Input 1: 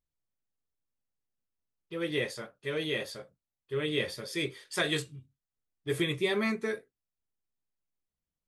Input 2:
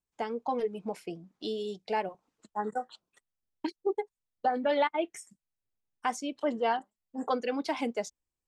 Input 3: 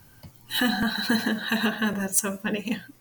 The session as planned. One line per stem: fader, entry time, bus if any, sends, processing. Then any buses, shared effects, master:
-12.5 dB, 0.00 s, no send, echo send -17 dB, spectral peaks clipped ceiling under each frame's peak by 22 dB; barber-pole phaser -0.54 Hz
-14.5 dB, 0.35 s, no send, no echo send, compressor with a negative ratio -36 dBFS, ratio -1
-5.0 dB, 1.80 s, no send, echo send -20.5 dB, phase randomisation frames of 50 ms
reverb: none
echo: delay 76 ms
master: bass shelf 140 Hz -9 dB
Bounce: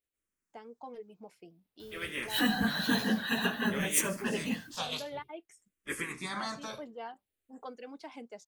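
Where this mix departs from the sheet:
stem 1 -12.5 dB -> -4.0 dB; stem 2: missing compressor with a negative ratio -36 dBFS, ratio -1; master: missing bass shelf 140 Hz -9 dB

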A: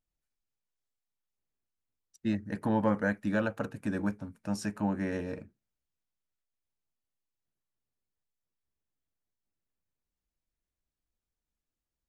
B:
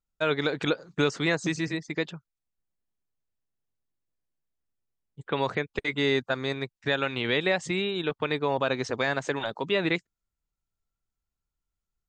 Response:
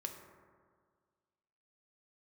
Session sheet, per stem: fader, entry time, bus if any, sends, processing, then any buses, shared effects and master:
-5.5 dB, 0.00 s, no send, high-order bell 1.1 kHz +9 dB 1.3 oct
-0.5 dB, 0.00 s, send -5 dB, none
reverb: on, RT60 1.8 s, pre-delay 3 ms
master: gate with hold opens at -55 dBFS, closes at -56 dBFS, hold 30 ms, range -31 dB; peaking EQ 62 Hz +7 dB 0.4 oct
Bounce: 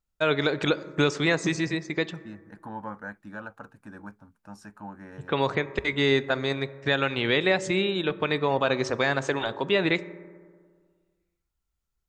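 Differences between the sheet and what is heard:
stem A -5.5 dB -> -12.5 dB; master: missing gate with hold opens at -55 dBFS, closes at -56 dBFS, hold 30 ms, range -31 dB

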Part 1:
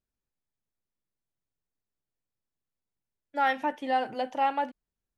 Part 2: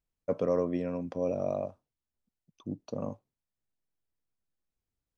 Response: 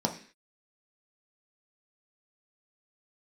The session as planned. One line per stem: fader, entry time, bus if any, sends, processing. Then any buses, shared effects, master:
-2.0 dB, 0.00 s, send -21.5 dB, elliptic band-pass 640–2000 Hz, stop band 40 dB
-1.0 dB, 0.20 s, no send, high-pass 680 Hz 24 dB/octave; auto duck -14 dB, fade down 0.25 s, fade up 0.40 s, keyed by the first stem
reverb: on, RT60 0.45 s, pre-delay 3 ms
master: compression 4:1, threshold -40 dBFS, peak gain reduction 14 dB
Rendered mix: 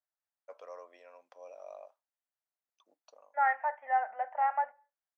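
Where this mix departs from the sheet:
stem 2 -1.0 dB -> -10.0 dB; master: missing compression 4:1, threshold -40 dBFS, peak gain reduction 14 dB

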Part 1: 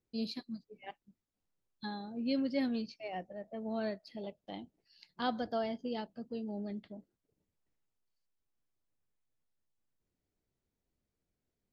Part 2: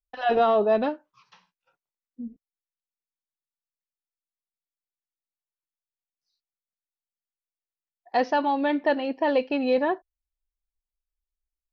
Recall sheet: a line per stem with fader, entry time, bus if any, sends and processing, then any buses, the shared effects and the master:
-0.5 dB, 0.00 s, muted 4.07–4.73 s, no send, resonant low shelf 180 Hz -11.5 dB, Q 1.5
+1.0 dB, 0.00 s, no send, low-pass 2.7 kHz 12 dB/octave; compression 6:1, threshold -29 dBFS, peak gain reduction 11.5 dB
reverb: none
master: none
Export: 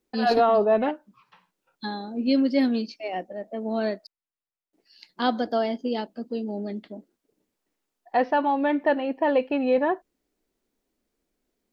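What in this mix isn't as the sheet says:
stem 1 -0.5 dB -> +9.5 dB; stem 2: missing compression 6:1, threshold -29 dBFS, peak gain reduction 11.5 dB

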